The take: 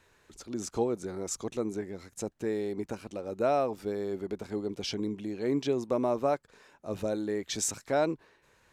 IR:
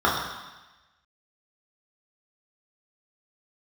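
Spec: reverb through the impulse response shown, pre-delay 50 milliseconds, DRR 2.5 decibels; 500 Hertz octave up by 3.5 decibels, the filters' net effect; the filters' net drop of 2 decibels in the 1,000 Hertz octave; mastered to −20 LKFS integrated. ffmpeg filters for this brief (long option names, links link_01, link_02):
-filter_complex "[0:a]equalizer=frequency=500:width_type=o:gain=6.5,equalizer=frequency=1000:width_type=o:gain=-8,asplit=2[link_01][link_02];[1:a]atrim=start_sample=2205,adelay=50[link_03];[link_02][link_03]afir=irnorm=-1:irlink=0,volume=-22.5dB[link_04];[link_01][link_04]amix=inputs=2:normalize=0,volume=9dB"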